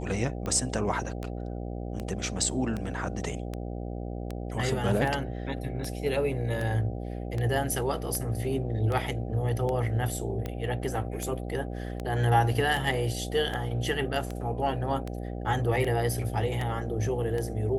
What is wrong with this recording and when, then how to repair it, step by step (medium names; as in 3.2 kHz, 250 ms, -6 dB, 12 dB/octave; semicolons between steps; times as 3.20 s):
buzz 60 Hz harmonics 13 -35 dBFS
tick 78 rpm -20 dBFS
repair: de-click; de-hum 60 Hz, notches 13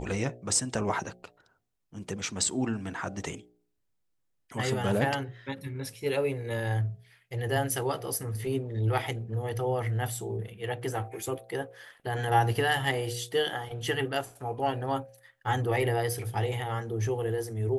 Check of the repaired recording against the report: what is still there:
nothing left